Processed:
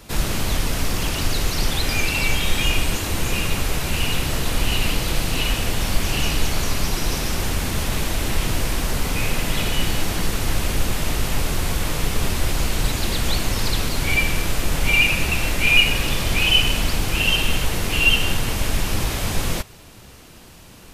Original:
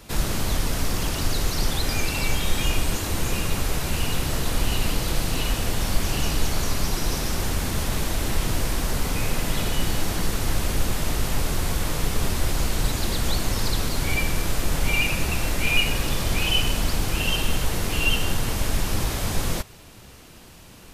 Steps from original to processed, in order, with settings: dynamic EQ 2600 Hz, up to +6 dB, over -39 dBFS, Q 1.6; gain +2 dB

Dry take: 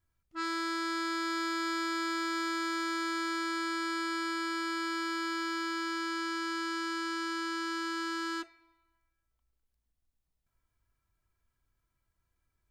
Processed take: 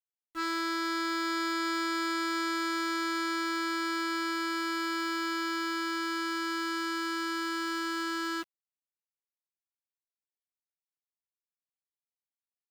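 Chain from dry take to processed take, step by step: sample gate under -47.5 dBFS; gain +2 dB

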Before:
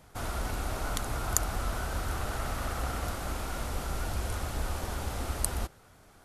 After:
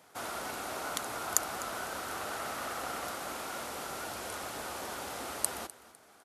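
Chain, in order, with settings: Bessel high-pass 360 Hz, order 2; feedback echo 0.252 s, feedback 30%, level -18.5 dB

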